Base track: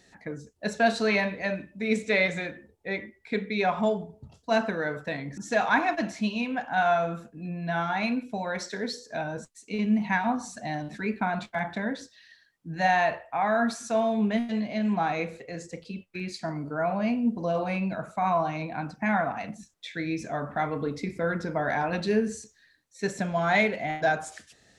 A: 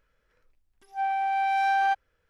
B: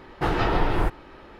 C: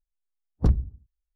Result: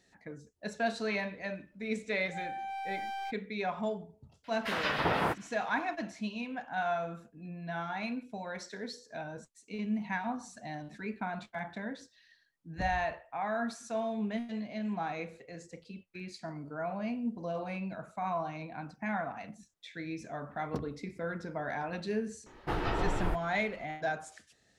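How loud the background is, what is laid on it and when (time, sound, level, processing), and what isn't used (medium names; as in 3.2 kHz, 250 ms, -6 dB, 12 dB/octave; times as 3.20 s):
base track -9 dB
1.37 s: add A -12 dB + hard clipper -25 dBFS
4.44 s: add B -0.5 dB + spectral gate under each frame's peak -15 dB weak
12.16 s: add C -12 dB + compression, threshold -23 dBFS
20.10 s: add C -6 dB + high-pass 270 Hz
22.46 s: add B -9 dB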